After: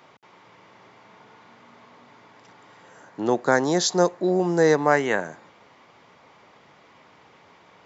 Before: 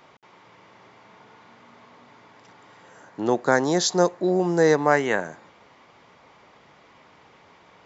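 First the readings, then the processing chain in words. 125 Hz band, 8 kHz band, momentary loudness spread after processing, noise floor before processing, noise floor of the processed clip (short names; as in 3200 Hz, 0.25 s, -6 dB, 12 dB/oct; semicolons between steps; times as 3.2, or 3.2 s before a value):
0.0 dB, n/a, 8 LU, -55 dBFS, -55 dBFS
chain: HPF 73 Hz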